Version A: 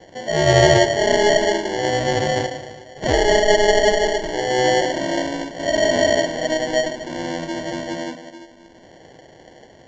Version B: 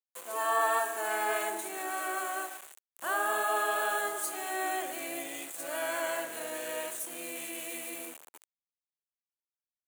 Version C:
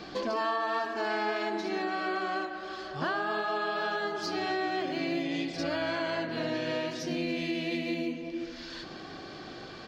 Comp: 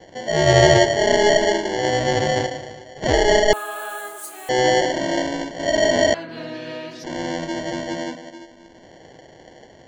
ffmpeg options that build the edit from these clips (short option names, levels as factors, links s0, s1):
-filter_complex "[0:a]asplit=3[s0][s1][s2];[s0]atrim=end=3.532[s3];[1:a]atrim=start=3.528:end=4.492[s4];[s1]atrim=start=4.488:end=6.142[s5];[2:a]atrim=start=6.138:end=7.042[s6];[s2]atrim=start=7.038[s7];[s3][s4]acrossfade=d=0.004:c1=hsin:c2=hsin[s8];[s8][s5]acrossfade=d=0.004:c1=hsin:c2=hsin[s9];[s9][s6]acrossfade=d=0.004:c1=hsin:c2=hsin[s10];[s10][s7]acrossfade=d=0.004:c1=hsin:c2=hsin"